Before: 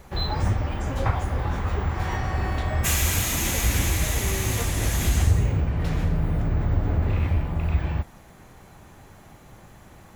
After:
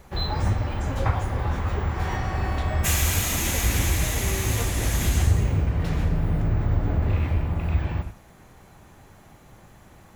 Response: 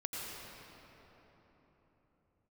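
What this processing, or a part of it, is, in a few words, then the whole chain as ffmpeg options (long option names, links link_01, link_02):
keyed gated reverb: -filter_complex "[0:a]asplit=3[link_01][link_02][link_03];[1:a]atrim=start_sample=2205[link_04];[link_02][link_04]afir=irnorm=-1:irlink=0[link_05];[link_03]apad=whole_len=447857[link_06];[link_05][link_06]sidechaingate=range=-33dB:threshold=-34dB:ratio=16:detection=peak,volume=-10.5dB[link_07];[link_01][link_07]amix=inputs=2:normalize=0,volume=-2dB"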